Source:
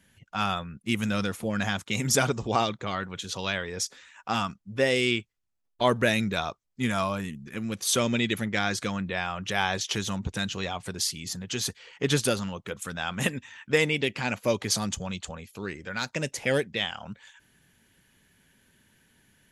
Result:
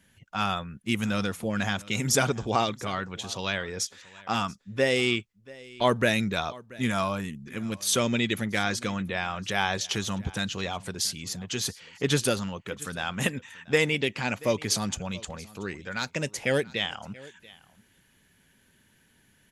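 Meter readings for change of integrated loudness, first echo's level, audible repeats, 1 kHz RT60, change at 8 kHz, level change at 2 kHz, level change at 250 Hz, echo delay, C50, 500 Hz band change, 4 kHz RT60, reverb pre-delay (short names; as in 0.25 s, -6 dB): 0.0 dB, -21.5 dB, 1, none, 0.0 dB, 0.0 dB, 0.0 dB, 0.683 s, none, 0.0 dB, none, none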